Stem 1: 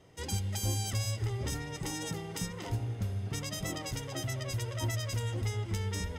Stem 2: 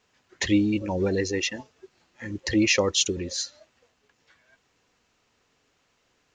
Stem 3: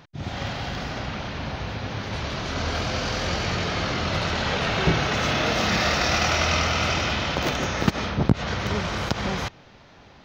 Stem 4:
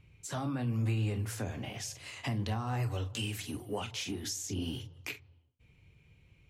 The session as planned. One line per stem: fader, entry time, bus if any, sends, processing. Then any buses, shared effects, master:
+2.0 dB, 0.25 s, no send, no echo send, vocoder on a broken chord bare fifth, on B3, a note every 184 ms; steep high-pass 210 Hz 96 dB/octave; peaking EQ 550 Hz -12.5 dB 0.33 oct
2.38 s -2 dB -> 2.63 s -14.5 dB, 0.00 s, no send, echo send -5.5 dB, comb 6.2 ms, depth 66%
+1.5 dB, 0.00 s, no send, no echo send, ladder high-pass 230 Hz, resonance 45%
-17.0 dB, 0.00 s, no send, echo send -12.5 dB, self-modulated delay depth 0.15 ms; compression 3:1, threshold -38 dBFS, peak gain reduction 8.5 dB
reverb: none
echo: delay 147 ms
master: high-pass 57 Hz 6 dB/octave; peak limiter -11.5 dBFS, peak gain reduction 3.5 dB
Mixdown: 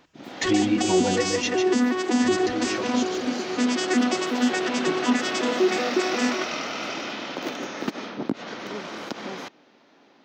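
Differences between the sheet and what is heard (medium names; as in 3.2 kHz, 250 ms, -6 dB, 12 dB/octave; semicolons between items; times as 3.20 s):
stem 1 +2.0 dB -> +13.5 dB; master: missing high-pass 57 Hz 6 dB/octave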